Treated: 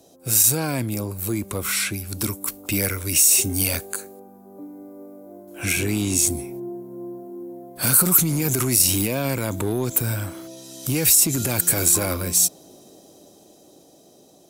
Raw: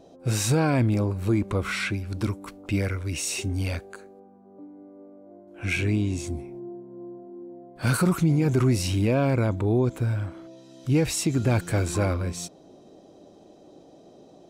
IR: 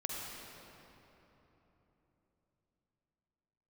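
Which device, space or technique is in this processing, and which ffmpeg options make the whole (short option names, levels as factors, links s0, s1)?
FM broadcast chain: -filter_complex "[0:a]highpass=40,dynaudnorm=f=480:g=11:m=3.35,acrossover=split=140|1200[s0][s1][s2];[s0]acompressor=threshold=0.0355:ratio=4[s3];[s1]acompressor=threshold=0.178:ratio=4[s4];[s2]acompressor=threshold=0.0562:ratio=4[s5];[s3][s4][s5]amix=inputs=3:normalize=0,aemphasis=mode=production:type=50fm,alimiter=limit=0.251:level=0:latency=1:release=29,asoftclip=type=hard:threshold=0.2,lowpass=f=15000:w=0.5412,lowpass=f=15000:w=1.3066,aemphasis=mode=production:type=50fm,volume=0.75"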